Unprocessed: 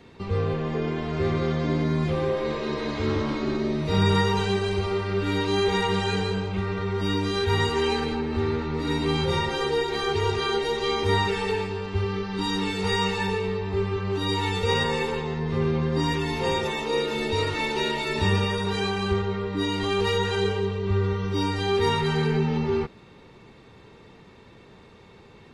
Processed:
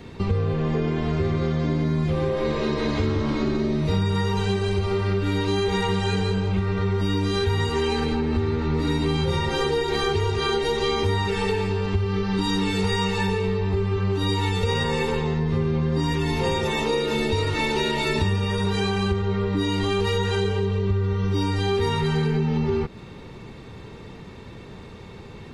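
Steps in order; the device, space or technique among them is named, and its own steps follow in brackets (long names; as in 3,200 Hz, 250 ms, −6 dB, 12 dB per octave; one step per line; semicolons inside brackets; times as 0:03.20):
ASMR close-microphone chain (low-shelf EQ 220 Hz +7.5 dB; downward compressor, threshold −26 dBFS, peak gain reduction 13.5 dB; high-shelf EQ 7,000 Hz +4.5 dB)
level +6 dB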